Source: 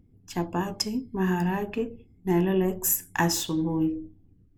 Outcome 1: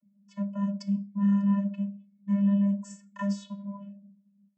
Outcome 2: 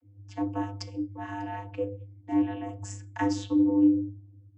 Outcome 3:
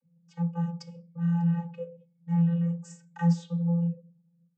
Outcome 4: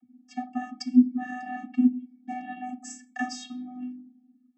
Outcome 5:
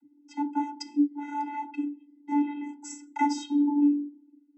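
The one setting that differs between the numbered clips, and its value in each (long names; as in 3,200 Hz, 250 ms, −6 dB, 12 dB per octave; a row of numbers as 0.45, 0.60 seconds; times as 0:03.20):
channel vocoder, frequency: 200, 100, 170, 250, 290 Hertz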